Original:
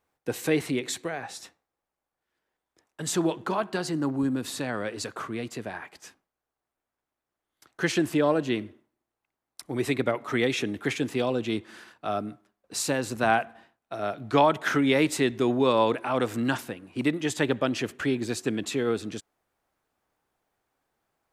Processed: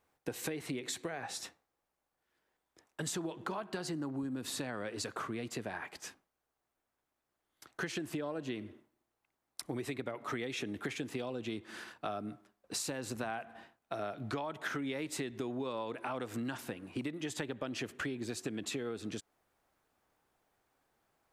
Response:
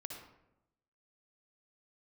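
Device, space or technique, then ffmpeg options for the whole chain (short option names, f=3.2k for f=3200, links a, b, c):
serial compression, leveller first: -af "acompressor=threshold=-27dB:ratio=2.5,acompressor=threshold=-37dB:ratio=5,volume=1dB"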